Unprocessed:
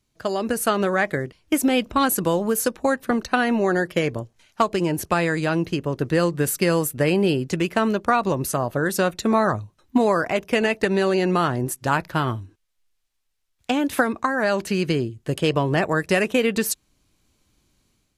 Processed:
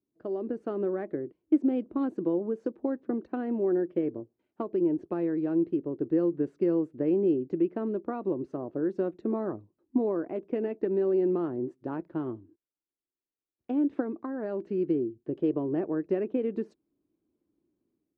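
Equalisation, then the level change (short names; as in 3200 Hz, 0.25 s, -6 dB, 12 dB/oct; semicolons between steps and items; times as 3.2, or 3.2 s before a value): band-pass 330 Hz, Q 3.5; air absorption 120 m; 0.0 dB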